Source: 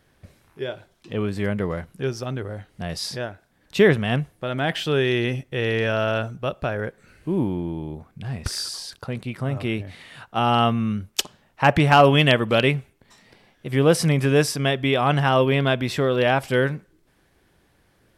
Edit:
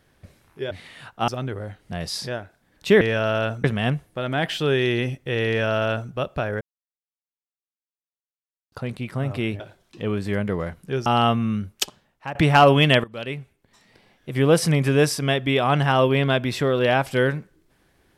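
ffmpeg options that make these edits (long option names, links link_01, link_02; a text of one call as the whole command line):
ffmpeg -i in.wav -filter_complex "[0:a]asplit=11[link_01][link_02][link_03][link_04][link_05][link_06][link_07][link_08][link_09][link_10][link_11];[link_01]atrim=end=0.712[link_12];[link_02]atrim=start=9.858:end=10.432[link_13];[link_03]atrim=start=2.168:end=3.902[link_14];[link_04]atrim=start=5.738:end=6.372[link_15];[link_05]atrim=start=3.898:end=6.87,asetpts=PTS-STARTPTS,afade=type=out:start_time=2.968:duration=0.004:curve=hsin[link_16];[link_06]atrim=start=6.87:end=8.98,asetpts=PTS-STARTPTS,volume=0[link_17];[link_07]atrim=start=8.98:end=9.862,asetpts=PTS-STARTPTS,afade=type=in:duration=0.004:curve=hsin[link_18];[link_08]atrim=start=0.708:end=2.172[link_19];[link_09]atrim=start=10.428:end=11.72,asetpts=PTS-STARTPTS,afade=type=out:start_time=0.682:duration=0.61:silence=0.105925[link_20];[link_10]atrim=start=11.72:end=12.41,asetpts=PTS-STARTPTS,afade=type=in:duration=0.004:curve=hsin:silence=0.105925,afade=type=out:start_time=0.686:duration=0.004:curve=hsin:silence=0.0944061[link_21];[link_11]atrim=start=12.41,asetpts=PTS-STARTPTS,afade=type=in:duration=1.28:silence=0.0944061[link_22];[link_12][link_13]acrossfade=duration=0.004:curve1=hsin:curve2=hsin[link_23];[link_23][link_14]acrossfade=duration=0.004:curve1=hsin:curve2=hsin[link_24];[link_24][link_15]acrossfade=duration=0.004:curve1=hsin:curve2=hsin[link_25];[link_16][link_17][link_18]concat=n=3:v=0:a=1[link_26];[link_25][link_26]acrossfade=duration=0.004:curve1=hsin:curve2=hsin[link_27];[link_27][link_19]acrossfade=duration=0.004:curve1=hsin:curve2=hsin[link_28];[link_20][link_21][link_22]concat=n=3:v=0:a=1[link_29];[link_28][link_29]acrossfade=duration=0.004:curve1=hsin:curve2=hsin" out.wav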